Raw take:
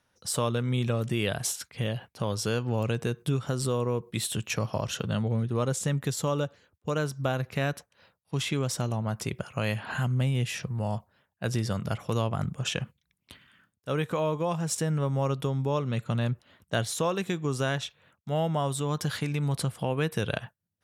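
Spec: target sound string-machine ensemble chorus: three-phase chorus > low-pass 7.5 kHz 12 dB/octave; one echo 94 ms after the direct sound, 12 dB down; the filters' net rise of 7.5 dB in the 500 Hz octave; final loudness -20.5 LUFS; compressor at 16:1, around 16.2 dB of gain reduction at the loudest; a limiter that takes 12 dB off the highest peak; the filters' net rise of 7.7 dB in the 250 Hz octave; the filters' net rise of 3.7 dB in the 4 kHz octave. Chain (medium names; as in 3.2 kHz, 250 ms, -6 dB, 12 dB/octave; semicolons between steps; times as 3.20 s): peaking EQ 250 Hz +8.5 dB; peaking EQ 500 Hz +6.5 dB; peaking EQ 4 kHz +5 dB; compression 16:1, threshold -33 dBFS; peak limiter -31.5 dBFS; delay 94 ms -12 dB; three-phase chorus; low-pass 7.5 kHz 12 dB/octave; trim +25 dB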